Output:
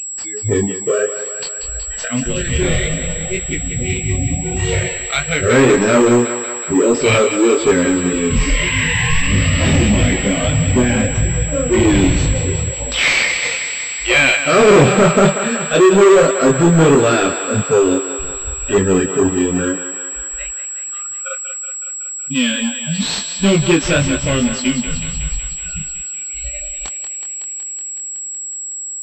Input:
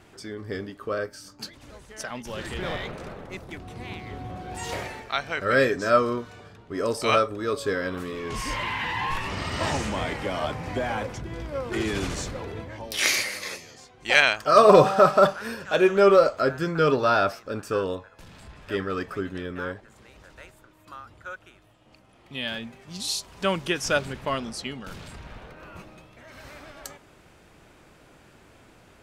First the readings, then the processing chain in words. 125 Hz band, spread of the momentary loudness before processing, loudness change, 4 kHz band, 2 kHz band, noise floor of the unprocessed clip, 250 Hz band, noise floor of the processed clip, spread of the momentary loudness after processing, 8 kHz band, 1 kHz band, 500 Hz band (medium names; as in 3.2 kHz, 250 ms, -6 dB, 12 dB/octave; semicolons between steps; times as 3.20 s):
+17.0 dB, 22 LU, +8.5 dB, +9.5 dB, +9.5 dB, -55 dBFS, +15.5 dB, -27 dBFS, 12 LU, +20.0 dB, +3.5 dB, +9.0 dB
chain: chorus 1.7 Hz, delay 19 ms, depth 6.2 ms; FFT filter 370 Hz 0 dB, 900 Hz -23 dB, 2.3 kHz -5 dB; in parallel at -1 dB: upward compressor, threshold -35 dBFS; on the sum: waveshaping leveller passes 5; spectral noise reduction 29 dB; on a send: thinning echo 186 ms, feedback 77%, high-pass 490 Hz, level -8.5 dB; on the sum: class-D stage that switches slowly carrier 7.7 kHz